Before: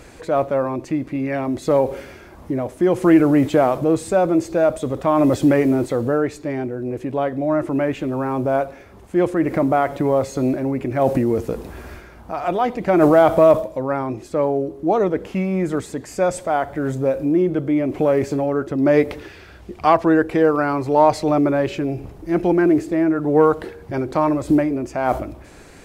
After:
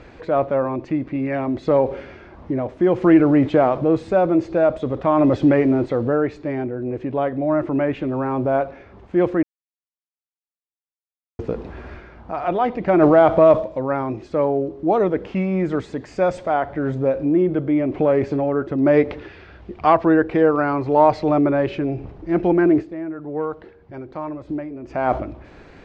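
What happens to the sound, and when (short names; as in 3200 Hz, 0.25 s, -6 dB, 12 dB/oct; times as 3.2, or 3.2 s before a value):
9.43–11.39 mute
13.46–16.54 high shelf 5100 Hz +7 dB
22.8–24.91 dip -11 dB, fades 0.40 s exponential
whole clip: Bessel low-pass 3100 Hz, order 4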